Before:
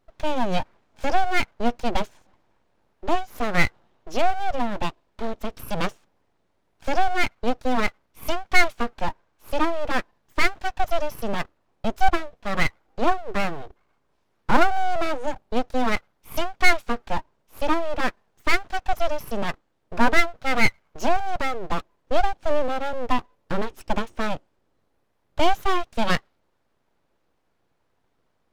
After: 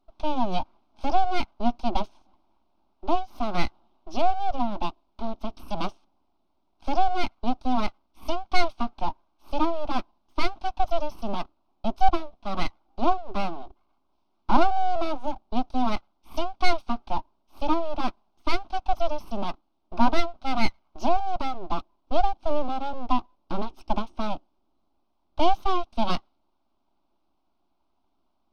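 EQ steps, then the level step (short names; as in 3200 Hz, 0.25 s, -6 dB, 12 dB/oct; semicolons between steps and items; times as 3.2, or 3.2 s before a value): polynomial smoothing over 15 samples; fixed phaser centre 480 Hz, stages 6; 0.0 dB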